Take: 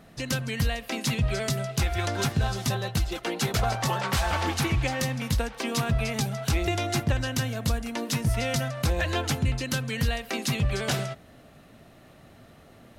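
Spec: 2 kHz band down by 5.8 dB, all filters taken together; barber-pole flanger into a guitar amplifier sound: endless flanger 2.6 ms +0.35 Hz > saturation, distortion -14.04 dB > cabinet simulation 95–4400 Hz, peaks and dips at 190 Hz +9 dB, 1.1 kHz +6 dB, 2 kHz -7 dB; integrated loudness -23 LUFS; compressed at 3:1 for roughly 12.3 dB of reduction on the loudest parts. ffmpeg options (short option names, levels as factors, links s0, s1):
-filter_complex "[0:a]equalizer=f=2000:t=o:g=-5,acompressor=threshold=0.0126:ratio=3,asplit=2[s0][s1];[s1]adelay=2.6,afreqshift=0.35[s2];[s0][s2]amix=inputs=2:normalize=1,asoftclip=threshold=0.015,highpass=95,equalizer=f=190:t=q:w=4:g=9,equalizer=f=1100:t=q:w=4:g=6,equalizer=f=2000:t=q:w=4:g=-7,lowpass=f=4400:w=0.5412,lowpass=f=4400:w=1.3066,volume=11.2"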